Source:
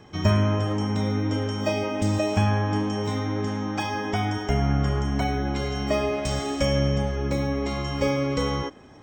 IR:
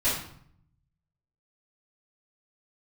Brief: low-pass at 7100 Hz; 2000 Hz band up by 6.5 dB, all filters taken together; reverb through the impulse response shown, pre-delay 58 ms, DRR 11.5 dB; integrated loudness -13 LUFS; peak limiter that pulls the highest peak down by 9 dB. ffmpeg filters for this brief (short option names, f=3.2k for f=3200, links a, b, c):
-filter_complex "[0:a]lowpass=7.1k,equalizer=f=2k:t=o:g=8,alimiter=limit=-17.5dB:level=0:latency=1,asplit=2[a][b];[1:a]atrim=start_sample=2205,adelay=58[c];[b][c]afir=irnorm=-1:irlink=0,volume=-23dB[d];[a][d]amix=inputs=2:normalize=0,volume=12.5dB"